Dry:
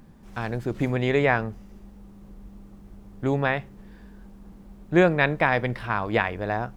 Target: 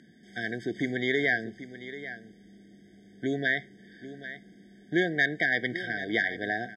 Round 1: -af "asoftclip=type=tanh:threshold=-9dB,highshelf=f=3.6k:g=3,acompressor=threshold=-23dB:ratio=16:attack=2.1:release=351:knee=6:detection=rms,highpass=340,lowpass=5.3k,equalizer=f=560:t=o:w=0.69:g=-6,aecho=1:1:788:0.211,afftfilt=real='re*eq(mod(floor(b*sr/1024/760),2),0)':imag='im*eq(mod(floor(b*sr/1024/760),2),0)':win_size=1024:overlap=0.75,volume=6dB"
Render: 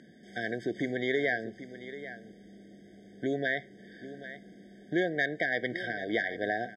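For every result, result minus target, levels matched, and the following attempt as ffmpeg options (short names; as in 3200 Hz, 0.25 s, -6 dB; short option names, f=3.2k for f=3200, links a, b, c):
compressor: peak gain reduction +6 dB; 500 Hz band +4.0 dB
-af "asoftclip=type=tanh:threshold=-9dB,highshelf=f=3.6k:g=3,acompressor=threshold=-16.5dB:ratio=16:attack=2.1:release=351:knee=6:detection=rms,highpass=340,lowpass=5.3k,equalizer=f=560:t=o:w=0.69:g=-6,aecho=1:1:788:0.211,afftfilt=real='re*eq(mod(floor(b*sr/1024/760),2),0)':imag='im*eq(mod(floor(b*sr/1024/760),2),0)':win_size=1024:overlap=0.75,volume=6dB"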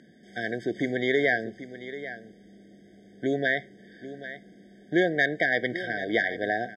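500 Hz band +3.5 dB
-af "asoftclip=type=tanh:threshold=-9dB,highshelf=f=3.6k:g=3,acompressor=threshold=-16.5dB:ratio=16:attack=2.1:release=351:knee=6:detection=rms,highpass=340,lowpass=5.3k,equalizer=f=560:t=o:w=0.69:g=-16.5,aecho=1:1:788:0.211,afftfilt=real='re*eq(mod(floor(b*sr/1024/760),2),0)':imag='im*eq(mod(floor(b*sr/1024/760),2),0)':win_size=1024:overlap=0.75,volume=6dB"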